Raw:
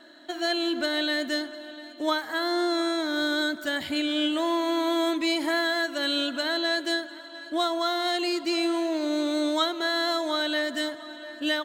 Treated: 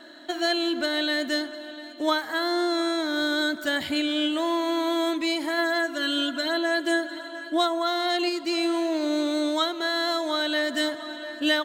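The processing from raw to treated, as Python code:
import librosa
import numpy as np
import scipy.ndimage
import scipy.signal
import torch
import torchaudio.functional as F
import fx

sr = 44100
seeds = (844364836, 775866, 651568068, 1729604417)

y = fx.comb(x, sr, ms=2.9, depth=0.84, at=(5.57, 8.28), fade=0.02)
y = fx.rider(y, sr, range_db=5, speed_s=0.5)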